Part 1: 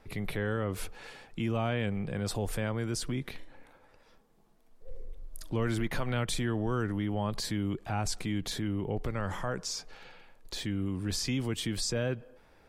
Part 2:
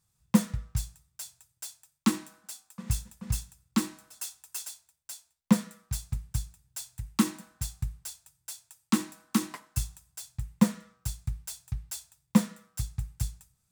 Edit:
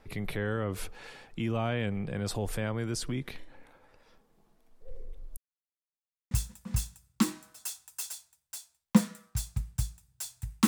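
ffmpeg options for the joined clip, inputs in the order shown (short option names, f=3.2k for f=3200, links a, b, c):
-filter_complex "[0:a]apad=whole_dur=10.67,atrim=end=10.67,asplit=2[a][b];[a]atrim=end=5.37,asetpts=PTS-STARTPTS,afade=t=out:st=5.366:d=0.004:c=hsin[c];[b]atrim=start=5.37:end=6.31,asetpts=PTS-STARTPTS,volume=0[d];[1:a]atrim=start=2.87:end=7.23,asetpts=PTS-STARTPTS,afade=t=in:d=0.004:c=hsin[e];[c][d][e]concat=n=3:v=0:a=1"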